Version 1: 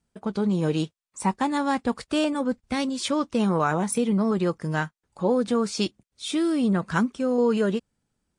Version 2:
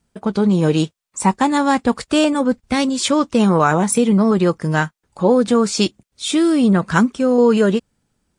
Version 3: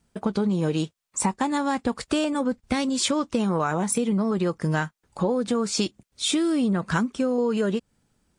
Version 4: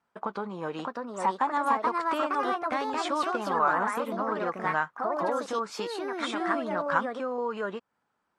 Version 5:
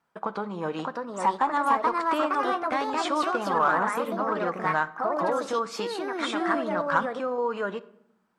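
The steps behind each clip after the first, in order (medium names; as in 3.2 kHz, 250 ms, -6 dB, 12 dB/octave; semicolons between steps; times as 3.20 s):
dynamic bell 7.3 kHz, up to +5 dB, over -55 dBFS, Q 4.5; trim +8.5 dB
compression 6:1, threshold -21 dBFS, peak gain reduction 11.5 dB
ever faster or slower copies 655 ms, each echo +3 st, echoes 2; band-pass filter 1.1 kHz, Q 1.8; trim +3.5 dB
in parallel at -10 dB: hard clipper -20.5 dBFS, distortion -16 dB; on the sum: simulated room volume 1900 m³, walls furnished, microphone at 0.6 m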